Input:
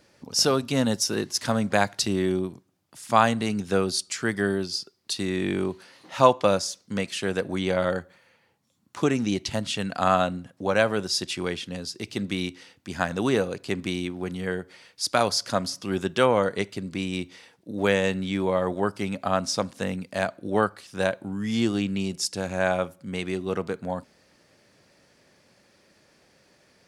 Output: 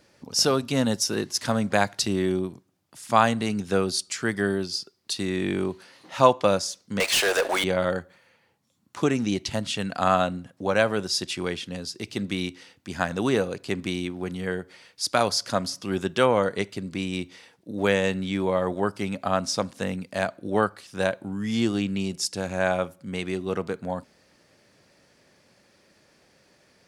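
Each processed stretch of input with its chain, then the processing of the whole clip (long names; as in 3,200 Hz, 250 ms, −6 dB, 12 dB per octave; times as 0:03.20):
0:07.00–0:07.64: high-pass filter 550 Hz 24 dB per octave + leveller curve on the samples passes 5
whole clip: no processing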